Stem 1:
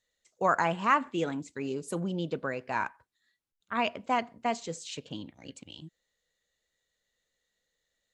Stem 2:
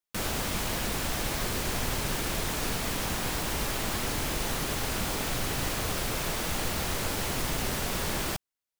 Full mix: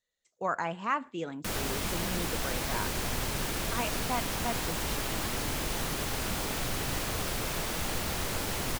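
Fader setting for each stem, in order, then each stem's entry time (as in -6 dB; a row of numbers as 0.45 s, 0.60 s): -5.5 dB, -2.0 dB; 0.00 s, 1.30 s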